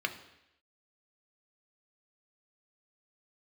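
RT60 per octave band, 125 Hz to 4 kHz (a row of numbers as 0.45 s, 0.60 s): 0.75 s, 0.80 s, 0.85 s, 0.85 s, 0.90 s, 0.90 s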